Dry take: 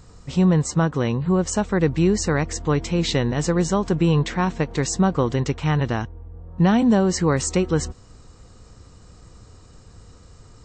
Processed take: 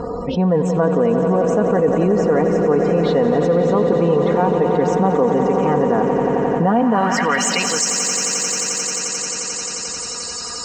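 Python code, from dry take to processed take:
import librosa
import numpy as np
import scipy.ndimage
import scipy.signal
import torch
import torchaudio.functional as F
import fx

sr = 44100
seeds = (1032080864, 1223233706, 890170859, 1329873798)

p1 = fx.spec_topn(x, sr, count=64)
p2 = p1 + 0.63 * np.pad(p1, (int(4.2 * sr / 1000.0), 0))[:len(p1)]
p3 = p2 + fx.echo_swell(p2, sr, ms=88, loudest=5, wet_db=-12.0, dry=0)
p4 = fx.filter_sweep_bandpass(p3, sr, from_hz=530.0, to_hz=5600.0, start_s=6.64, end_s=7.8, q=1.2)
p5 = np.sign(p4) * np.maximum(np.abs(p4) - 10.0 ** (-42.5 / 20.0), 0.0)
p6 = p4 + (p5 * librosa.db_to_amplitude(-12.0))
y = fx.env_flatten(p6, sr, amount_pct=70)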